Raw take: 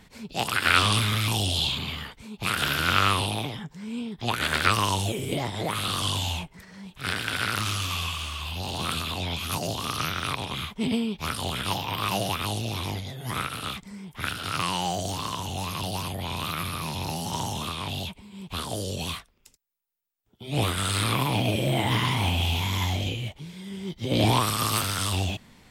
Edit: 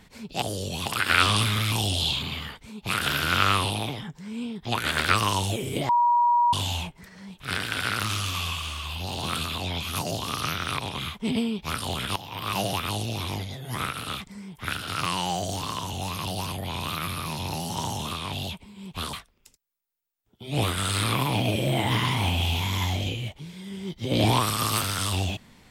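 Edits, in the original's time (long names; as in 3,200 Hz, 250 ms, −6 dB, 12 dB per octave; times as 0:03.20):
0:05.45–0:06.09: beep over 958 Hz −17 dBFS
0:11.72–0:12.15: fade in, from −14.5 dB
0:18.69–0:19.13: move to 0:00.42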